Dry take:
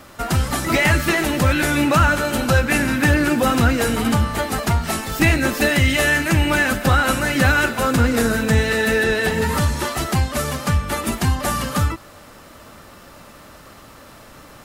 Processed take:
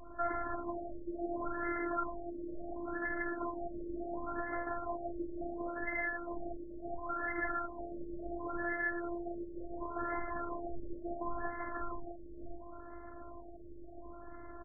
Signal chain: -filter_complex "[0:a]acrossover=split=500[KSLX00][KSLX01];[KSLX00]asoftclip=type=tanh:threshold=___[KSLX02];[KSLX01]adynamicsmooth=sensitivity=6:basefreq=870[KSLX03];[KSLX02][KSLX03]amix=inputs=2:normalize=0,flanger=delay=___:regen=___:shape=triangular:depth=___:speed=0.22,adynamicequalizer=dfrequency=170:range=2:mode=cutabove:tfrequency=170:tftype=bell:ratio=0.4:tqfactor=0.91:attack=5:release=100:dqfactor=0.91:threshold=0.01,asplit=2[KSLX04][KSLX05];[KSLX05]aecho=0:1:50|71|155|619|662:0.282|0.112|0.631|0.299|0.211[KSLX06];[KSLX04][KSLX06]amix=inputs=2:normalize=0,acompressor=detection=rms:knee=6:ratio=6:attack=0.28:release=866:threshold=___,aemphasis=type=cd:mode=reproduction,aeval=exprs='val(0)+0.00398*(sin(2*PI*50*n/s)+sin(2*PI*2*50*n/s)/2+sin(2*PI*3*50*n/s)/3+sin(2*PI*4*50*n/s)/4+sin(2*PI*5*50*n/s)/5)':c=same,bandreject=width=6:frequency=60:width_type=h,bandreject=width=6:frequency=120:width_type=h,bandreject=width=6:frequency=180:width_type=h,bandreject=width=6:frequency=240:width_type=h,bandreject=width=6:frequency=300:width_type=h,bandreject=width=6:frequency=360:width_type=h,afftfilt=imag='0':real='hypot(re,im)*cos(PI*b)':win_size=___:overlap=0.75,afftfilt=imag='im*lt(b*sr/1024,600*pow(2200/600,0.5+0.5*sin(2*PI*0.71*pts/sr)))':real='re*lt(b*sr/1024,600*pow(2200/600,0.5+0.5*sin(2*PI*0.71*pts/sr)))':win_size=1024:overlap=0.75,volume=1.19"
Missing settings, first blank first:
0.0944, 4.9, -33, 8, 0.0501, 512